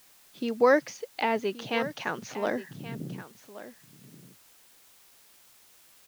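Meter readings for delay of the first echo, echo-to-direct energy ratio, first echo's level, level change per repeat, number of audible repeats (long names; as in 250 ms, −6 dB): 1,126 ms, −15.0 dB, −15.0 dB, repeats not evenly spaced, 1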